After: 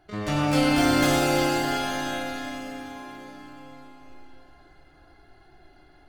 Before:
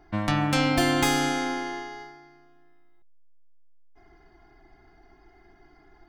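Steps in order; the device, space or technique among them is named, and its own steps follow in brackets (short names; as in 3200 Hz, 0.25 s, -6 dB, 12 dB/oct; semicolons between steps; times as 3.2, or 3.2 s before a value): shimmer-style reverb (harmoniser +12 st -5 dB; reverb RT60 5.5 s, pre-delay 3 ms, DRR -5.5 dB); gain -6.5 dB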